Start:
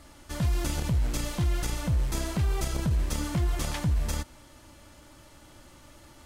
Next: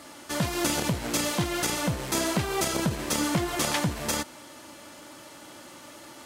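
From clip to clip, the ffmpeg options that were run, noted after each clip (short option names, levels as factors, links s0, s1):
-af "highpass=230,volume=2.66"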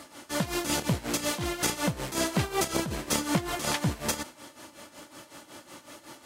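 -af "tremolo=f=5.4:d=0.75,volume=1.19"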